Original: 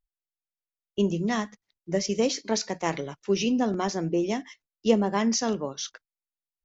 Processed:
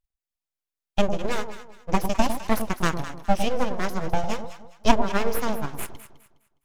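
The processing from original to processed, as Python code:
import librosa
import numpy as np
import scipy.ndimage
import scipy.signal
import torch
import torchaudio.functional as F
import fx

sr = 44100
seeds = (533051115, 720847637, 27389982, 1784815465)

y = fx.transient(x, sr, attack_db=7, sustain_db=-6)
y = np.abs(y)
y = fx.echo_alternate(y, sr, ms=103, hz=960.0, feedback_pct=54, wet_db=-7.0)
y = y * 10.0 ** (1.0 / 20.0)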